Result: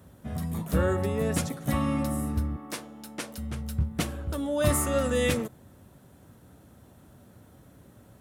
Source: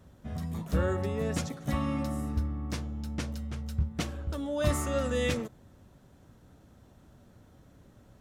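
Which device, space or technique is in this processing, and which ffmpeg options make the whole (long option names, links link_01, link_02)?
budget condenser microphone: -filter_complex "[0:a]asettb=1/sr,asplit=3[link_01][link_02][link_03];[link_01]atrim=end=2.564[link_04];[link_02]atrim=start=2.56:end=3.38,asetpts=PTS-STARTPTS,afade=type=in:duration=0.004:curve=qsin,afade=type=out:start_time=0.816:duration=0.004:curve=qsin,highpass=360[link_05];[link_03]atrim=start=3.376[link_06];[link_04][link_05]acrossfade=duration=0.004:curve1=hsin:curve2=qsin[link_07];[link_07][link_06]acrossfade=duration=0.004:curve1=qsin:curve2=hsin,highpass=69,highshelf=frequency=7900:width_type=q:width=1.5:gain=6.5,volume=4dB"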